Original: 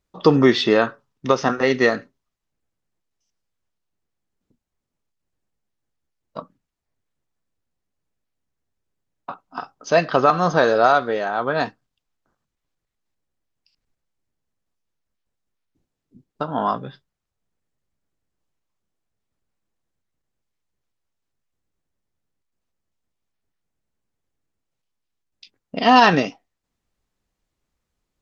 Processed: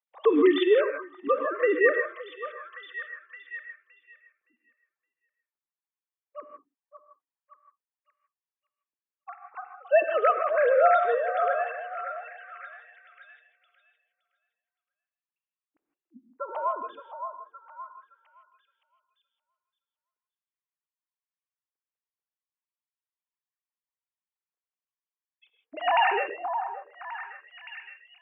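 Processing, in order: formants replaced by sine waves; repeats whose band climbs or falls 567 ms, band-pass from 880 Hz, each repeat 0.7 oct, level -7 dB; gated-style reverb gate 180 ms rising, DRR 6.5 dB; trim -6.5 dB

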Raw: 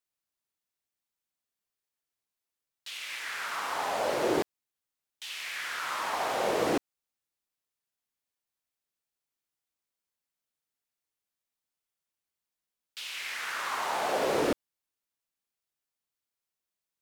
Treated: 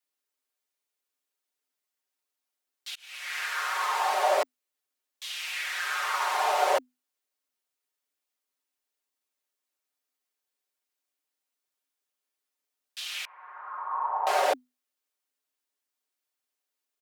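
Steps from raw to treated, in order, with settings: 2.95–3.37 s: fade in; comb 6 ms, depth 96%; frequency shift +250 Hz; 13.25–14.27 s: four-pole ladder low-pass 1.1 kHz, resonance 70%

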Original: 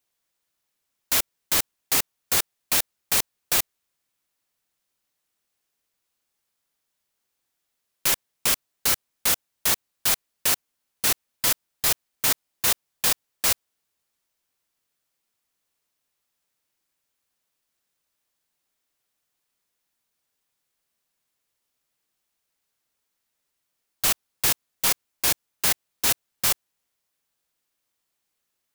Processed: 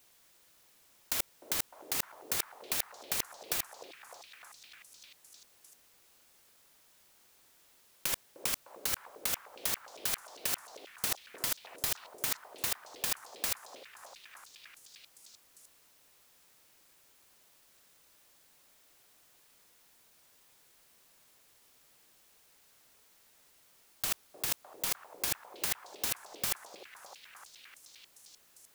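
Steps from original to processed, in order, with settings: compressor with a negative ratio -29 dBFS, ratio -0.5; on a send: repeats whose band climbs or falls 304 ms, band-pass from 450 Hz, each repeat 0.7 oct, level -2.5 dB; on the sum: trim +1.5 dB

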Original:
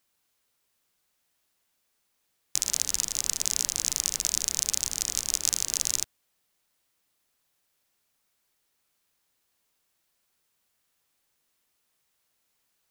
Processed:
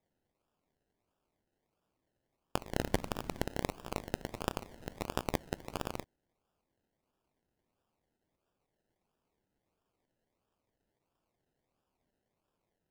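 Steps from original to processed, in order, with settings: 2.81–3.46 s: resonant low shelf 370 Hz +8.5 dB, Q 1.5; decimation with a swept rate 30×, swing 60% 1.5 Hz; trim -9 dB

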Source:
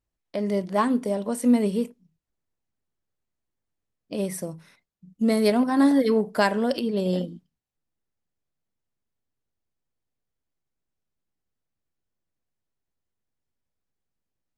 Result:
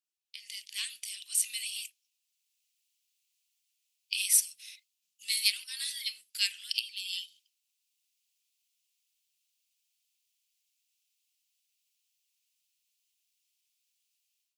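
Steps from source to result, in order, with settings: level rider gain up to 16 dB; elliptic high-pass 2.6 kHz, stop band 70 dB

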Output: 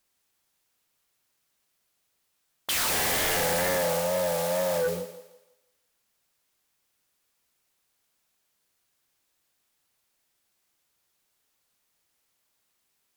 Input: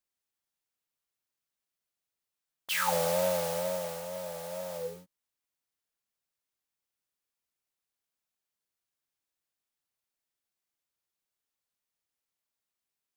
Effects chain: thinning echo 165 ms, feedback 35%, high-pass 290 Hz, level -13 dB; sine folder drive 17 dB, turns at -15.5 dBFS; trim -7 dB

